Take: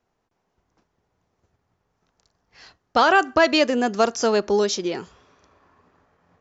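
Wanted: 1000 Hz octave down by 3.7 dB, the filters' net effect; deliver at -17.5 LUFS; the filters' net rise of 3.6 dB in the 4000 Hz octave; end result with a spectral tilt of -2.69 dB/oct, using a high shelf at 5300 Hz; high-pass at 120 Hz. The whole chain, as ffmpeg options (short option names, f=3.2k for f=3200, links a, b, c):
-af "highpass=120,equalizer=f=1k:t=o:g=-5.5,equalizer=f=4k:t=o:g=7.5,highshelf=f=5.3k:g=-6,volume=3.5dB"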